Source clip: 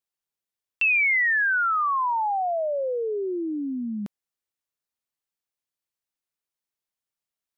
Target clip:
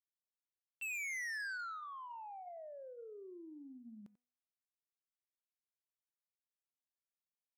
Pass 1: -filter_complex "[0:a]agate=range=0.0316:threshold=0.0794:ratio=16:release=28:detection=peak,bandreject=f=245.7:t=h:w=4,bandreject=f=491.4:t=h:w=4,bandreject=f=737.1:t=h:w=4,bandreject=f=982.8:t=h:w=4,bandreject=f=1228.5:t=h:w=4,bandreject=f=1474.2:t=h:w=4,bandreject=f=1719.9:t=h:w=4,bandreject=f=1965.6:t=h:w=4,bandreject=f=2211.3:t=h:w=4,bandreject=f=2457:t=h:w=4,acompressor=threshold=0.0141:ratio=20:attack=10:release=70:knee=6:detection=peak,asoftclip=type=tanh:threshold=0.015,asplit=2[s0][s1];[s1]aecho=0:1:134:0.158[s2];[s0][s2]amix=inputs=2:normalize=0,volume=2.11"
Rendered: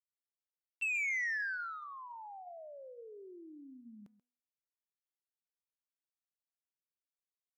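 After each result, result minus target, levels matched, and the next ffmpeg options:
echo 43 ms late; saturation: distortion -11 dB
-filter_complex "[0:a]agate=range=0.0316:threshold=0.0794:ratio=16:release=28:detection=peak,bandreject=f=245.7:t=h:w=4,bandreject=f=491.4:t=h:w=4,bandreject=f=737.1:t=h:w=4,bandreject=f=982.8:t=h:w=4,bandreject=f=1228.5:t=h:w=4,bandreject=f=1474.2:t=h:w=4,bandreject=f=1719.9:t=h:w=4,bandreject=f=1965.6:t=h:w=4,bandreject=f=2211.3:t=h:w=4,bandreject=f=2457:t=h:w=4,acompressor=threshold=0.0141:ratio=20:attack=10:release=70:knee=6:detection=peak,asoftclip=type=tanh:threshold=0.015,asplit=2[s0][s1];[s1]aecho=0:1:91:0.158[s2];[s0][s2]amix=inputs=2:normalize=0,volume=2.11"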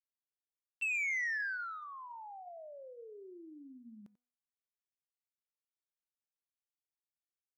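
saturation: distortion -11 dB
-filter_complex "[0:a]agate=range=0.0316:threshold=0.0794:ratio=16:release=28:detection=peak,bandreject=f=245.7:t=h:w=4,bandreject=f=491.4:t=h:w=4,bandreject=f=737.1:t=h:w=4,bandreject=f=982.8:t=h:w=4,bandreject=f=1228.5:t=h:w=4,bandreject=f=1474.2:t=h:w=4,bandreject=f=1719.9:t=h:w=4,bandreject=f=1965.6:t=h:w=4,bandreject=f=2211.3:t=h:w=4,bandreject=f=2457:t=h:w=4,acompressor=threshold=0.0141:ratio=20:attack=10:release=70:knee=6:detection=peak,asoftclip=type=tanh:threshold=0.00473,asplit=2[s0][s1];[s1]aecho=0:1:91:0.158[s2];[s0][s2]amix=inputs=2:normalize=0,volume=2.11"

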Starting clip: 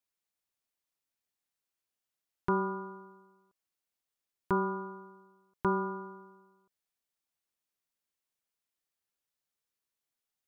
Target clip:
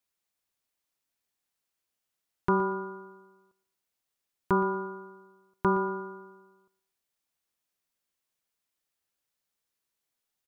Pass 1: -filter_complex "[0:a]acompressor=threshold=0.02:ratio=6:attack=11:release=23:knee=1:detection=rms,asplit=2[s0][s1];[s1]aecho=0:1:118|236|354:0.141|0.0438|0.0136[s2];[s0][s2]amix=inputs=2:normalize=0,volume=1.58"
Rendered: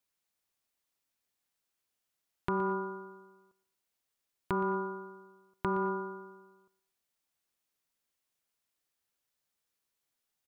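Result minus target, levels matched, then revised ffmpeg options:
compression: peak gain reduction +8.5 dB
-filter_complex "[0:a]asplit=2[s0][s1];[s1]aecho=0:1:118|236|354:0.141|0.0438|0.0136[s2];[s0][s2]amix=inputs=2:normalize=0,volume=1.58"

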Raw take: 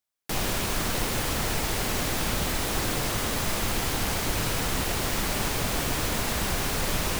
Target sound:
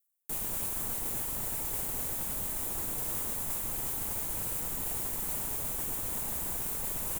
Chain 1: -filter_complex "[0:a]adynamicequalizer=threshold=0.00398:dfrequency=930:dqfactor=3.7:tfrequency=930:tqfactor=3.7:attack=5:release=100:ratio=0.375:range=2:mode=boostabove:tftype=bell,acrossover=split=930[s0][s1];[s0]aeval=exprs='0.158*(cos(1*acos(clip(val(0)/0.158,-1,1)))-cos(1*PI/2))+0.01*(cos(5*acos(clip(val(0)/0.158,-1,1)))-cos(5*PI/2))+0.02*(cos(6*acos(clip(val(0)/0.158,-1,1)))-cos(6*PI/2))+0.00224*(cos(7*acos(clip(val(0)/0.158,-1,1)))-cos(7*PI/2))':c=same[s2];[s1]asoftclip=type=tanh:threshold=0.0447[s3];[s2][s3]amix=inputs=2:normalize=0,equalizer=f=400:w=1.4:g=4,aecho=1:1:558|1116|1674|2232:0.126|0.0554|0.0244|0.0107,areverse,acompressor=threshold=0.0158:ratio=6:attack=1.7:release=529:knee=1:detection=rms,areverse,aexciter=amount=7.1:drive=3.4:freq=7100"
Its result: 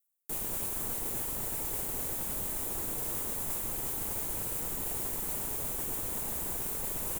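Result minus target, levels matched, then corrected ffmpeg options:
500 Hz band +3.0 dB
-filter_complex "[0:a]adynamicequalizer=threshold=0.00398:dfrequency=930:dqfactor=3.7:tfrequency=930:tqfactor=3.7:attack=5:release=100:ratio=0.375:range=2:mode=boostabove:tftype=bell,acrossover=split=930[s0][s1];[s0]aeval=exprs='0.158*(cos(1*acos(clip(val(0)/0.158,-1,1)))-cos(1*PI/2))+0.01*(cos(5*acos(clip(val(0)/0.158,-1,1)))-cos(5*PI/2))+0.02*(cos(6*acos(clip(val(0)/0.158,-1,1)))-cos(6*PI/2))+0.00224*(cos(7*acos(clip(val(0)/0.158,-1,1)))-cos(7*PI/2))':c=same[s2];[s1]asoftclip=type=tanh:threshold=0.0447[s3];[s2][s3]amix=inputs=2:normalize=0,aecho=1:1:558|1116|1674|2232:0.126|0.0554|0.0244|0.0107,areverse,acompressor=threshold=0.0158:ratio=6:attack=1.7:release=529:knee=1:detection=rms,areverse,aexciter=amount=7.1:drive=3.4:freq=7100"

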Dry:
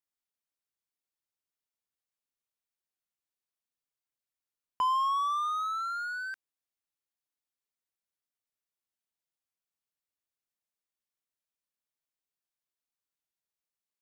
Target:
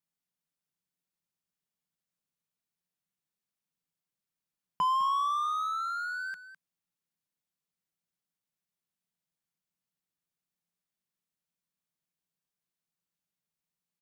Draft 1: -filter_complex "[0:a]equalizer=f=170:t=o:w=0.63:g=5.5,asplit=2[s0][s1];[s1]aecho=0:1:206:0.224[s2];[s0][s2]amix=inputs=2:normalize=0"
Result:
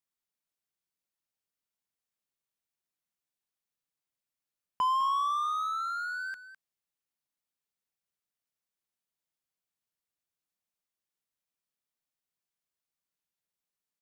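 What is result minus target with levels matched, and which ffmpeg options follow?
125 Hz band -7.5 dB
-filter_complex "[0:a]equalizer=f=170:t=o:w=0.63:g=17,asplit=2[s0][s1];[s1]aecho=0:1:206:0.224[s2];[s0][s2]amix=inputs=2:normalize=0"

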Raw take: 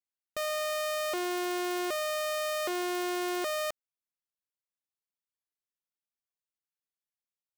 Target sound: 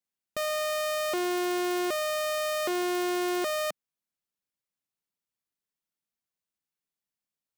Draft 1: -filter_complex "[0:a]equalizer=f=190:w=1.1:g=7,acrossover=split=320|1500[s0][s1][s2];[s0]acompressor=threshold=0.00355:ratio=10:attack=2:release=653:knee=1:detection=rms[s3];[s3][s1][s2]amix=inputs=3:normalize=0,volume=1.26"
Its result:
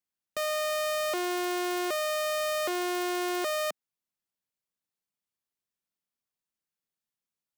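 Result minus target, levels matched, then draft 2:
compression: peak gain reduction +11 dB
-af "equalizer=f=190:w=1.1:g=7,volume=1.26"

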